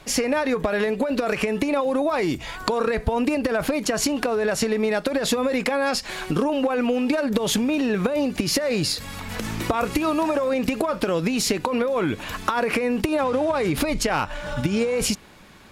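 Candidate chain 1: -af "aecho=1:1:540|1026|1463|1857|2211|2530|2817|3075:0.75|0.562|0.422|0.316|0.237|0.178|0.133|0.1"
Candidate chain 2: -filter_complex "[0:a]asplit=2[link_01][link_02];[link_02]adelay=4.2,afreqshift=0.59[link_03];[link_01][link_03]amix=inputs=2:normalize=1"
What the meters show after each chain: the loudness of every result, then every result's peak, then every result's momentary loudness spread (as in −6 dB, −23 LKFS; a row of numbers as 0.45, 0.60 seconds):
−20.0, −26.5 LKFS; −5.5, −11.0 dBFS; 2, 5 LU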